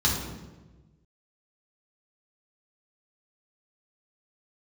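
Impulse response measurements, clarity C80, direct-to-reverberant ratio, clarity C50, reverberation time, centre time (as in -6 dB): 5.5 dB, -4.5 dB, 3.0 dB, 1.2 s, 51 ms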